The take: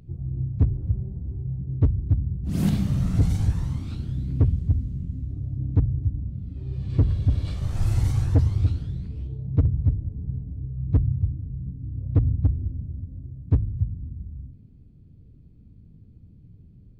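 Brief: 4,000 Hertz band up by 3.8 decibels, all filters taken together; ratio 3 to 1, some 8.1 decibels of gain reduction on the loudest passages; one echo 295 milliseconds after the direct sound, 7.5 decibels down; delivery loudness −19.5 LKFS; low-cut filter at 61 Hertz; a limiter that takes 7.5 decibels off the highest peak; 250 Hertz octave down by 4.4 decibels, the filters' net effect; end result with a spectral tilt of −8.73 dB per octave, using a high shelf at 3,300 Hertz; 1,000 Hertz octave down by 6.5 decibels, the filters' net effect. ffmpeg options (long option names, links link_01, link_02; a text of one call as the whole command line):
ffmpeg -i in.wav -af "highpass=61,equalizer=frequency=250:width_type=o:gain=-7,equalizer=frequency=1000:width_type=o:gain=-8.5,highshelf=frequency=3300:gain=-3.5,equalizer=frequency=4000:width_type=o:gain=7.5,acompressor=threshold=-27dB:ratio=3,alimiter=level_in=1dB:limit=-24dB:level=0:latency=1,volume=-1dB,aecho=1:1:295:0.422,volume=14.5dB" out.wav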